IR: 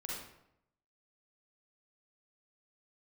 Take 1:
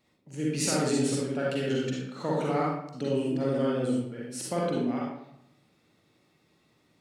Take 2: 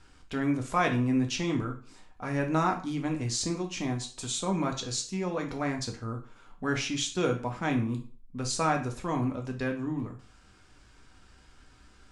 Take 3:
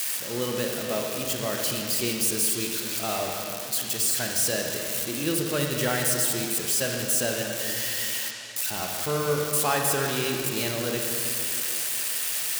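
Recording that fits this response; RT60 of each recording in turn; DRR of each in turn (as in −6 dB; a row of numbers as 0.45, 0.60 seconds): 1; 0.80, 0.40, 2.8 seconds; −5.0, 2.0, 1.0 decibels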